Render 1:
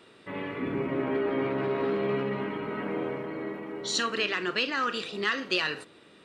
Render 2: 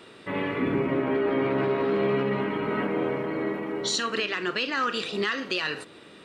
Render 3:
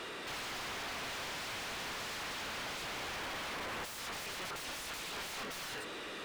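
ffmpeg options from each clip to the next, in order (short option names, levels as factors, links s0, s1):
-af "alimiter=limit=0.0708:level=0:latency=1:release=348,volume=2.11"
-filter_complex "[0:a]aeval=exprs='(mod(33.5*val(0)+1,2)-1)/33.5':c=same,asplit=2[s0][s1];[s1]highpass=f=720:p=1,volume=39.8,asoftclip=type=tanh:threshold=0.0299[s2];[s0][s2]amix=inputs=2:normalize=0,lowpass=f=3700:p=1,volume=0.501,volume=0.501"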